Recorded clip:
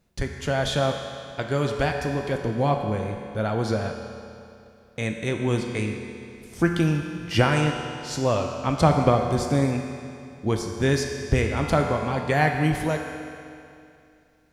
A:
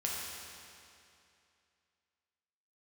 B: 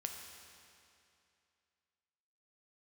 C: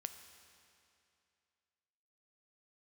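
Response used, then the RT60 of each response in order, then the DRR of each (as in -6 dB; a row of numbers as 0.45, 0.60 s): B; 2.6, 2.6, 2.6 s; -4.5, 2.5, 8.0 dB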